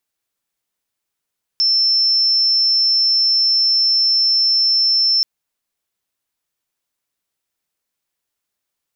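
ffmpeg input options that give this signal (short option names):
-f lavfi -i "sine=f=5340:d=3.63:r=44100,volume=6.06dB"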